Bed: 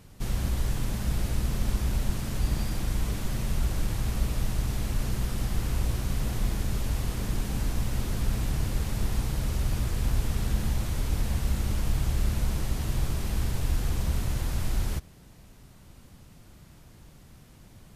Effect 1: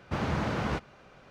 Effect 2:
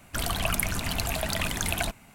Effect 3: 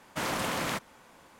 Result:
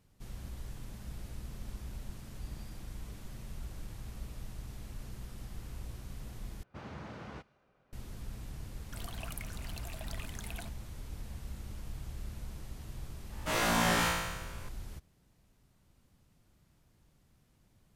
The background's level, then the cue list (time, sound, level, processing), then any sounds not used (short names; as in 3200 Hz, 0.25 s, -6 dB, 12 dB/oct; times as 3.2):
bed -16 dB
6.63 replace with 1 -15.5 dB + mismatched tape noise reduction decoder only
8.78 add 2 -17.5 dB
13.3 add 3 -4 dB + flutter echo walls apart 3 m, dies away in 1.2 s